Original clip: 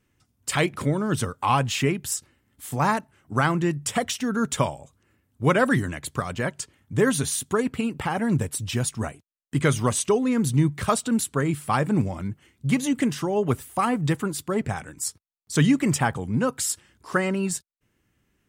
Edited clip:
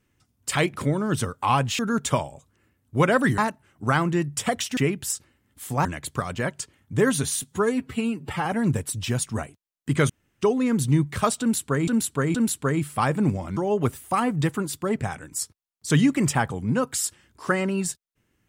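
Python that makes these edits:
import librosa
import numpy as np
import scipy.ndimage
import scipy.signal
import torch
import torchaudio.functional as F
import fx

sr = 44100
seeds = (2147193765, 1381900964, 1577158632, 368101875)

y = fx.edit(x, sr, fx.swap(start_s=1.79, length_s=1.08, other_s=4.26, other_length_s=1.59),
    fx.stretch_span(start_s=7.42, length_s=0.69, factor=1.5),
    fx.room_tone_fill(start_s=9.75, length_s=0.32),
    fx.repeat(start_s=11.06, length_s=0.47, count=3),
    fx.cut(start_s=12.28, length_s=0.94), tone=tone)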